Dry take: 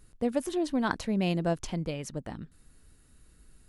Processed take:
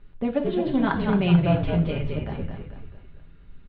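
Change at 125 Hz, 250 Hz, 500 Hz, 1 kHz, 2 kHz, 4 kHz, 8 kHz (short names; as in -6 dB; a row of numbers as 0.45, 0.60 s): +11.5 dB, +7.5 dB, +5.5 dB, +5.5 dB, +4.5 dB, +3.5 dB, under -35 dB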